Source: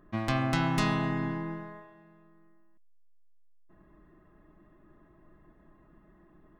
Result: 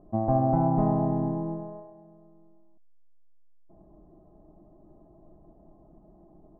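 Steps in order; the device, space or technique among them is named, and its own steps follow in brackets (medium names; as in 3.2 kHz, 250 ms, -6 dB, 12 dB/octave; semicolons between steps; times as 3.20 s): under water (low-pass 760 Hz 24 dB/octave; peaking EQ 740 Hz +11.5 dB 0.46 oct); trim +4 dB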